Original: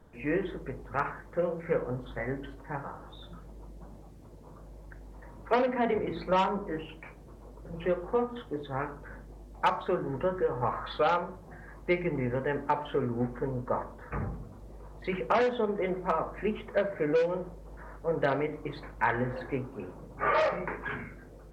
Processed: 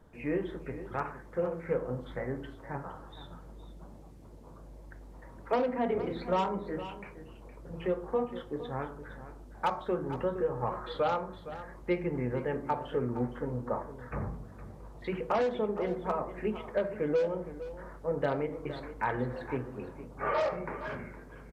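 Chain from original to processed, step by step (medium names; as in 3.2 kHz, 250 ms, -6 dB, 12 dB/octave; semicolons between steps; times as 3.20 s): resampled via 32 kHz; dynamic bell 2 kHz, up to -6 dB, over -43 dBFS, Q 0.78; delay 464 ms -13.5 dB; trim -1.5 dB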